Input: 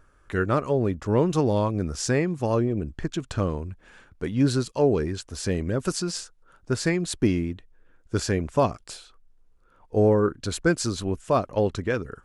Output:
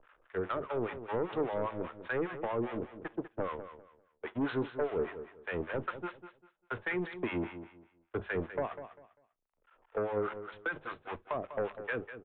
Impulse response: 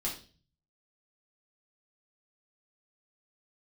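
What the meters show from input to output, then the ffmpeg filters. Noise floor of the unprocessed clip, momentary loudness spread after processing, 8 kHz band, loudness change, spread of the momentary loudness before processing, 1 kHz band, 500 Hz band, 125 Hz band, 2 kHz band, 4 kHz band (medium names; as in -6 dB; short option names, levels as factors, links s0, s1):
-59 dBFS, 10 LU, under -40 dB, -11.5 dB, 9 LU, -8.0 dB, -10.5 dB, -19.0 dB, -5.0 dB, -18.0 dB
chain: -filter_complex "[0:a]aeval=exprs='val(0)+0.5*0.0398*sgn(val(0))':c=same,bandreject=f=50:t=h:w=6,bandreject=f=100:t=h:w=6,bandreject=f=150:t=h:w=6,bandreject=f=200:t=h:w=6,agate=range=0.001:threshold=0.0631:ratio=16:detection=peak,acrossover=split=400 2700:gain=0.141 1 0.0794[s0][s1][s2];[s0][s1][s2]amix=inputs=3:normalize=0,acompressor=mode=upward:threshold=0.0126:ratio=2.5,alimiter=limit=0.158:level=0:latency=1:release=367,acrossover=split=300[s3][s4];[s4]acompressor=threshold=0.0251:ratio=2.5[s5];[s3][s5]amix=inputs=2:normalize=0,acrossover=split=730[s6][s7];[s6]aeval=exprs='val(0)*(1-1/2+1/2*cos(2*PI*5*n/s))':c=same[s8];[s7]aeval=exprs='val(0)*(1-1/2-1/2*cos(2*PI*5*n/s))':c=same[s9];[s8][s9]amix=inputs=2:normalize=0,aeval=exprs='0.106*sin(PI/2*2.51*val(0)/0.106)':c=same,aecho=1:1:198|396|594:0.266|0.0665|0.0166,asplit=2[s10][s11];[1:a]atrim=start_sample=2205,afade=t=out:st=0.14:d=0.01,atrim=end_sample=6615,asetrate=52920,aresample=44100[s12];[s11][s12]afir=irnorm=-1:irlink=0,volume=0.126[s13];[s10][s13]amix=inputs=2:normalize=0,aresample=8000,aresample=44100,volume=0.398"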